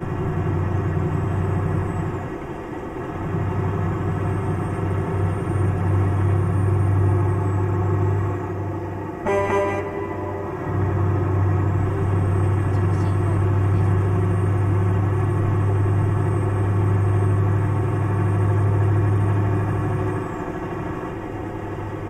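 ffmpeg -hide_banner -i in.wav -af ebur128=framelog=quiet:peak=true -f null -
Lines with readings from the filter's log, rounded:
Integrated loudness:
  I:         -22.1 LUFS
  Threshold: -32.1 LUFS
Loudness range:
  LRA:         4.5 LU
  Threshold: -41.8 LUFS
  LRA low:   -24.9 LUFS
  LRA high:  -20.4 LUFS
True peak:
  Peak:       -9.6 dBFS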